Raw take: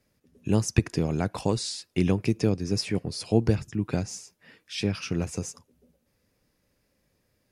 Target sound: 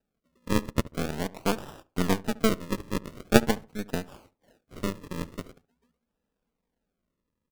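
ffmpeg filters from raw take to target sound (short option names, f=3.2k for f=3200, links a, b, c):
-filter_complex "[0:a]aecho=1:1:4.4:0.92,acrusher=samples=40:mix=1:aa=0.000001:lfo=1:lforange=40:lforate=0.44,aeval=exprs='0.473*(cos(1*acos(clip(val(0)/0.473,-1,1)))-cos(1*PI/2))+0.133*(cos(3*acos(clip(val(0)/0.473,-1,1)))-cos(3*PI/2))+0.0211*(cos(6*acos(clip(val(0)/0.473,-1,1)))-cos(6*PI/2))':c=same,asplit=2[a][b];[b]adelay=70,lowpass=f=1.4k:p=1,volume=-19dB,asplit=2[c][d];[d]adelay=70,lowpass=f=1.4k:p=1,volume=0.29[e];[c][e]amix=inputs=2:normalize=0[f];[a][f]amix=inputs=2:normalize=0,volume=3dB"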